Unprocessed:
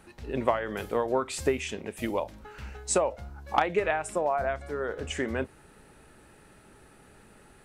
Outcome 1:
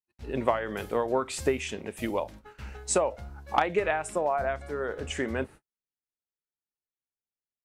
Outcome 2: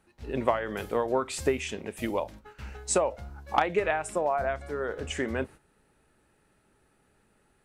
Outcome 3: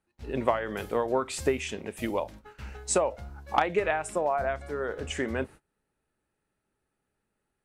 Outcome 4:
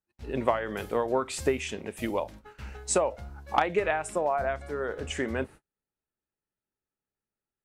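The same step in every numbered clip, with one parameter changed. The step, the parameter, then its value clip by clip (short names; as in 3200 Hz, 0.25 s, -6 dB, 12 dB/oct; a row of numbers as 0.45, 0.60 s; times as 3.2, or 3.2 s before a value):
gate, range: -54, -12, -26, -40 dB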